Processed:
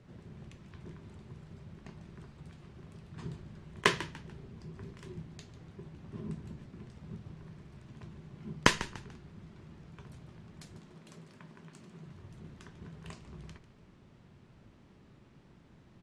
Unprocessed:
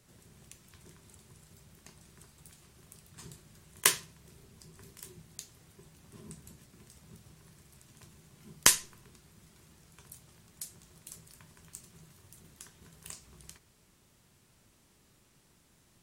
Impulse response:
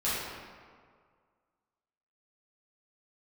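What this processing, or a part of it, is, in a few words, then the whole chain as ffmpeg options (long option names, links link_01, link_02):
phone in a pocket: -filter_complex "[0:a]asettb=1/sr,asplit=3[link_01][link_02][link_03];[link_01]atrim=end=10.774[link_04];[link_02]atrim=start=10.77:end=12.06,asetpts=PTS-STARTPTS,afade=type=in:duration=0.004:curve=qsin,afade=type=out:start_time=1.286:duration=0.004:curve=qsin,highpass=frequency=160:width=0.5412,highpass=frequency=160:width=1.3066[link_05];[link_03]atrim=start=12.056[link_06];[link_04][link_05]acrossfade=duration=0.004:curve1=hsin:curve2=qsin[link_07];[link_07][link_06]acrossfade=duration=0.004:curve1=qsin:curve2=hsin,lowpass=3800,equalizer=frequency=180:width_type=o:width=2.3:gain=5,highshelf=frequency=2300:gain=-8,asplit=4[link_08][link_09][link_10][link_11];[link_09]adelay=146,afreqshift=-65,volume=-15dB[link_12];[link_10]adelay=292,afreqshift=-130,volume=-25.2dB[link_13];[link_11]adelay=438,afreqshift=-195,volume=-35.3dB[link_14];[link_08][link_12][link_13][link_14]amix=inputs=4:normalize=0,volume=5.5dB"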